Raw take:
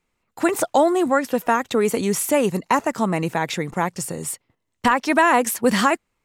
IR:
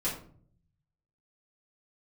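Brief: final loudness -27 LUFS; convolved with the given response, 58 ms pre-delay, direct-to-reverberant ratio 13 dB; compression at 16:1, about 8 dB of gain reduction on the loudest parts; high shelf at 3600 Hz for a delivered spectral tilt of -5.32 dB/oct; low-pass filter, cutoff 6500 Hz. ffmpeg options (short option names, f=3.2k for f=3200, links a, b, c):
-filter_complex "[0:a]lowpass=6.5k,highshelf=f=3.6k:g=-5,acompressor=threshold=-20dB:ratio=16,asplit=2[a][b];[1:a]atrim=start_sample=2205,adelay=58[c];[b][c]afir=irnorm=-1:irlink=0,volume=-18.5dB[d];[a][d]amix=inputs=2:normalize=0,volume=-0.5dB"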